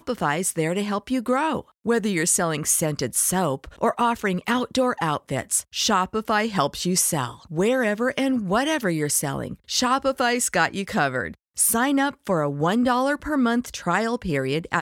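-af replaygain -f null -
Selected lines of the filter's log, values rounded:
track_gain = +4.3 dB
track_peak = 0.354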